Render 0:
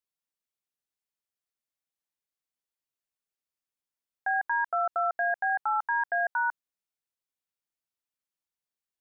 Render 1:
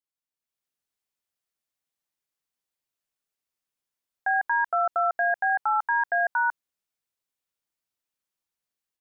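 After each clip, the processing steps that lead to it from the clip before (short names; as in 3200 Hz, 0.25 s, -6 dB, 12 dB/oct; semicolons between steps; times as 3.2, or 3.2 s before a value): AGC gain up to 8.5 dB; gain -5 dB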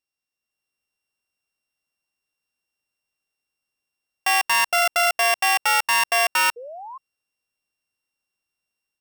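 sample sorter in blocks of 16 samples; painted sound rise, 6.56–6.98, 460–1100 Hz -41 dBFS; gain +4.5 dB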